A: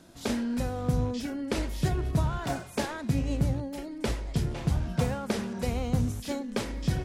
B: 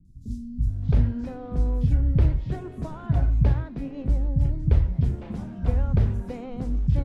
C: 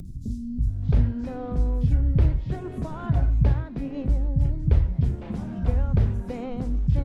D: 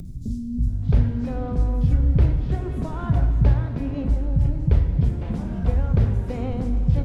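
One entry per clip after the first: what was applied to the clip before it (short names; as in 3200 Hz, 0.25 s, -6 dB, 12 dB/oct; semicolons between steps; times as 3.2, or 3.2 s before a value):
RIAA curve playback; three bands offset in time lows, highs, mids 50/670 ms, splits 210/5500 Hz; gain -5.5 dB
upward compressor, threshold -24 dBFS
plate-style reverb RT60 4 s, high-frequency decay 0.8×, DRR 7 dB; gain +2 dB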